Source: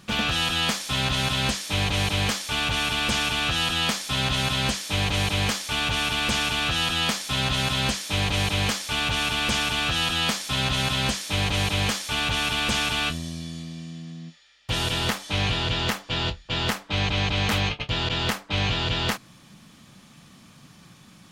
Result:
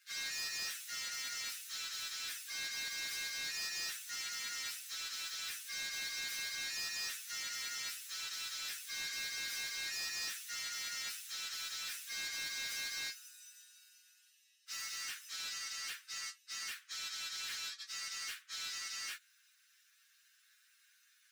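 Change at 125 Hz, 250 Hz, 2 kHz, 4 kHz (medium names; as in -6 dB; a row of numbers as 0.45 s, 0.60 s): under -40 dB, -38.0 dB, -15.5 dB, -16.5 dB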